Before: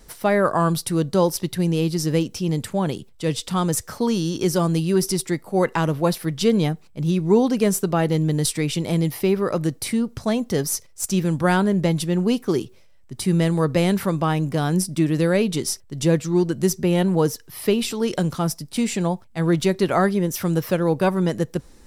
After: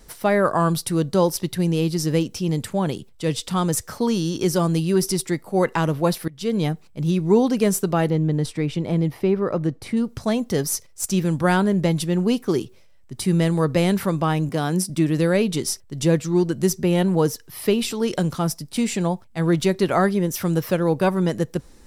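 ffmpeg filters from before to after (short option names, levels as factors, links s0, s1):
-filter_complex "[0:a]asettb=1/sr,asplit=3[s0][s1][s2];[s0]atrim=end=8.104[s3];[s1]atrim=start=8.1:end=9.97,asetpts=PTS-STARTPTS,afade=t=in:d=0.004:c=qsin,afade=t=out:st=1.866:d=0.004:c=qsin,lowpass=f=1500:p=1[s4];[s2]atrim=start=9.966[s5];[s3][s4]acrossfade=d=0.004:c1=hsin:c2=qsin[s6];[s6][s5]acrossfade=d=0.004:c1=qsin:c2=hsin,asettb=1/sr,asplit=3[s7][s8][s9];[s7]atrim=end=14.494[s10];[s8]atrim=start=14.49:end=14.9,asetpts=PTS-STARTPTS,afade=t=in:d=0.004:c=qsin,afade=t=out:st=0.406:d=0.004:c=qsin,highpass=150[s11];[s9]atrim=start=14.896[s12];[s10][s11]acrossfade=d=0.004:c1=hsin:c2=qsin[s13];[s13][s12]acrossfade=d=0.004:c1=qsin:c2=hsin,asplit=2[s14][s15];[s14]atrim=end=6.28,asetpts=PTS-STARTPTS,afade=t=out:st=6.276:d=0.004:c=hsin:silence=0.0749894[s16];[s15]atrim=start=6.28,asetpts=PTS-STARTPTS,afade=t=in:d=0.43:silence=0.0749894[s17];[s16][s17]concat=n=2:v=0:a=1"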